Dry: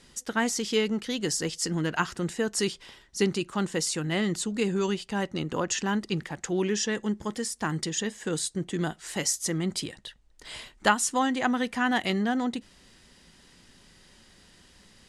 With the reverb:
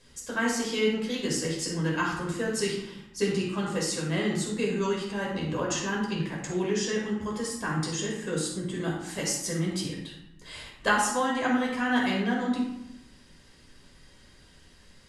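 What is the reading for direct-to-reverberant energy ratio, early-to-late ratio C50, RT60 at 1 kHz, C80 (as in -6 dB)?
-3.5 dB, 2.5 dB, 0.85 s, 5.5 dB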